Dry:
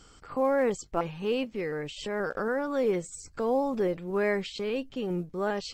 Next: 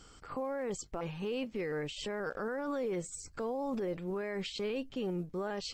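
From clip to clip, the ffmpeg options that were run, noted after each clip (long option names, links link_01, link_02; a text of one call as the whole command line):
ffmpeg -i in.wav -af "alimiter=level_in=3dB:limit=-24dB:level=0:latency=1:release=37,volume=-3dB,volume=-1.5dB" out.wav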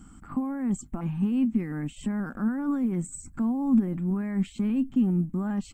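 ffmpeg -i in.wav -af "firequalizer=gain_entry='entry(130,0);entry(230,11);entry(460,-21);entry(730,-8);entry(1100,-7);entry(4800,-24);entry(8000,-3)':delay=0.05:min_phase=1,volume=8.5dB" out.wav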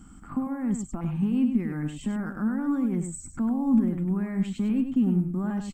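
ffmpeg -i in.wav -af "aecho=1:1:100:0.422" out.wav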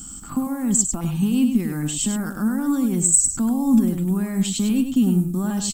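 ffmpeg -i in.wav -af "aexciter=amount=4.7:drive=8.4:freq=3100,volume=5dB" out.wav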